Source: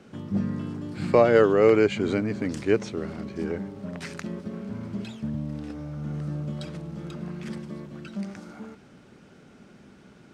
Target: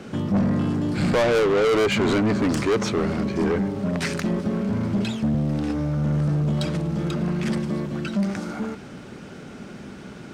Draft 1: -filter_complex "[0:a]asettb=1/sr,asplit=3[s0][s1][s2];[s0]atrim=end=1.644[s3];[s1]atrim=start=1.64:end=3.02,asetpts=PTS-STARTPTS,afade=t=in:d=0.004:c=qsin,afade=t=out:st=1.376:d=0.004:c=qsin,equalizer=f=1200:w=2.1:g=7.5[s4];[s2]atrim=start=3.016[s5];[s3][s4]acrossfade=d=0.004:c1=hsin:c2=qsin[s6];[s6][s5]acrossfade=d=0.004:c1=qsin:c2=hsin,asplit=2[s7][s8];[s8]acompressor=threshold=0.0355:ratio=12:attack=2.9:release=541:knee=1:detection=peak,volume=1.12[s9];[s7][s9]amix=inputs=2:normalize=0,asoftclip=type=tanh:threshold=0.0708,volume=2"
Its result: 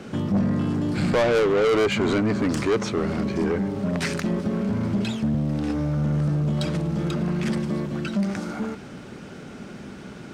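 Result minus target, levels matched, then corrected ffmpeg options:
compression: peak gain reduction +10 dB
-filter_complex "[0:a]asettb=1/sr,asplit=3[s0][s1][s2];[s0]atrim=end=1.644[s3];[s1]atrim=start=1.64:end=3.02,asetpts=PTS-STARTPTS,afade=t=in:d=0.004:c=qsin,afade=t=out:st=1.376:d=0.004:c=qsin,equalizer=f=1200:w=2.1:g=7.5[s4];[s2]atrim=start=3.016[s5];[s3][s4]acrossfade=d=0.004:c1=hsin:c2=qsin[s6];[s6][s5]acrossfade=d=0.004:c1=qsin:c2=hsin,asplit=2[s7][s8];[s8]acompressor=threshold=0.126:ratio=12:attack=2.9:release=541:knee=1:detection=peak,volume=1.12[s9];[s7][s9]amix=inputs=2:normalize=0,asoftclip=type=tanh:threshold=0.0708,volume=2"

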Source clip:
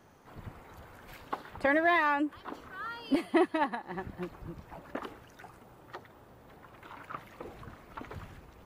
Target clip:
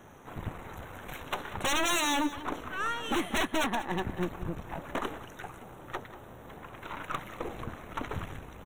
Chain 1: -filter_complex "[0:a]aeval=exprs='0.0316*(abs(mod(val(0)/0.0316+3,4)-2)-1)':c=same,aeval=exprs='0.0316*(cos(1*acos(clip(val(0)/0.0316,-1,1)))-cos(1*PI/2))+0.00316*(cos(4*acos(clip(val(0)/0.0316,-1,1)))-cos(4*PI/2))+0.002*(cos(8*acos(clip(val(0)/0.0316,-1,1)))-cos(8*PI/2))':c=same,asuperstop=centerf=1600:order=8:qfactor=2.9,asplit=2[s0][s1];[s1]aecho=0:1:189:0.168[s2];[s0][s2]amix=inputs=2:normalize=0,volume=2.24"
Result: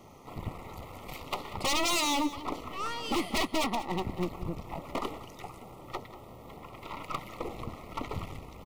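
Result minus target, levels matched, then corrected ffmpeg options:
2 kHz band -3.5 dB
-filter_complex "[0:a]aeval=exprs='0.0316*(abs(mod(val(0)/0.0316+3,4)-2)-1)':c=same,aeval=exprs='0.0316*(cos(1*acos(clip(val(0)/0.0316,-1,1)))-cos(1*PI/2))+0.00316*(cos(4*acos(clip(val(0)/0.0316,-1,1)))-cos(4*PI/2))+0.002*(cos(8*acos(clip(val(0)/0.0316,-1,1)))-cos(8*PI/2))':c=same,asuperstop=centerf=4800:order=8:qfactor=2.9,asplit=2[s0][s1];[s1]aecho=0:1:189:0.168[s2];[s0][s2]amix=inputs=2:normalize=0,volume=2.24"

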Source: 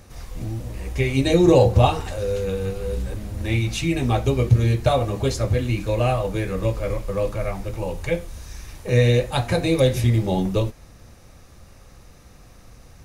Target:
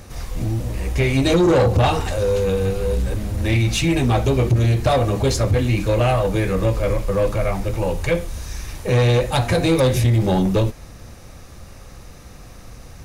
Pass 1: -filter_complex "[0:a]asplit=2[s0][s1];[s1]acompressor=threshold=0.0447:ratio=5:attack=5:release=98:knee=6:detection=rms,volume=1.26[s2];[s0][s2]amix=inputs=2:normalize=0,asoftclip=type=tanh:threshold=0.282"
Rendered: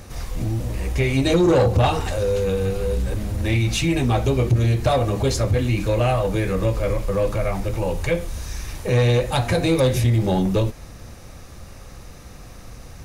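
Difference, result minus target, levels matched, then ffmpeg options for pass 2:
compression: peak gain reduction +9 dB
-filter_complex "[0:a]asplit=2[s0][s1];[s1]acompressor=threshold=0.168:ratio=5:attack=5:release=98:knee=6:detection=rms,volume=1.26[s2];[s0][s2]amix=inputs=2:normalize=0,asoftclip=type=tanh:threshold=0.282"

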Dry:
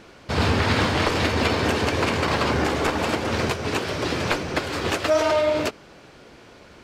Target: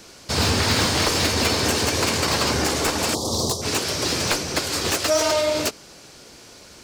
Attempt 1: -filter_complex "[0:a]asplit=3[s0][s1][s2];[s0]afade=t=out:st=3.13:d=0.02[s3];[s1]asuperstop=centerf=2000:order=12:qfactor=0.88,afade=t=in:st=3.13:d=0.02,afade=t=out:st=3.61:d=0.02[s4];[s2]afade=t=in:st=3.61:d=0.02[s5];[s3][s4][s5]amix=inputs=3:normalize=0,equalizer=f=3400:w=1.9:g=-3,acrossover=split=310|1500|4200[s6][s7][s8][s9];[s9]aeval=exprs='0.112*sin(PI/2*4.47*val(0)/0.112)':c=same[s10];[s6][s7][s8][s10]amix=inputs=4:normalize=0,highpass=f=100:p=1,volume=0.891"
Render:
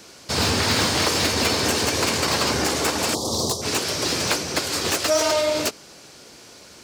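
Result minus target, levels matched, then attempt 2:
125 Hz band -2.5 dB
-filter_complex "[0:a]asplit=3[s0][s1][s2];[s0]afade=t=out:st=3.13:d=0.02[s3];[s1]asuperstop=centerf=2000:order=12:qfactor=0.88,afade=t=in:st=3.13:d=0.02,afade=t=out:st=3.61:d=0.02[s4];[s2]afade=t=in:st=3.61:d=0.02[s5];[s3][s4][s5]amix=inputs=3:normalize=0,equalizer=f=3400:w=1.9:g=-3,acrossover=split=310|1500|4200[s6][s7][s8][s9];[s9]aeval=exprs='0.112*sin(PI/2*4.47*val(0)/0.112)':c=same[s10];[s6][s7][s8][s10]amix=inputs=4:normalize=0,volume=0.891"

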